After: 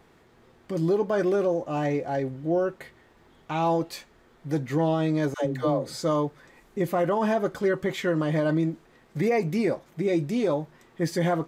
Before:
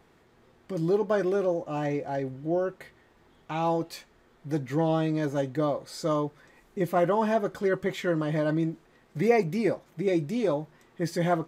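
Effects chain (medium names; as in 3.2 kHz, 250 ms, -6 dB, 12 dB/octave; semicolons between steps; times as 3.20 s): peak limiter -19 dBFS, peak gain reduction 7.5 dB; 5.34–6.03 s: phase dispersion lows, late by 117 ms, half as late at 430 Hz; trim +3 dB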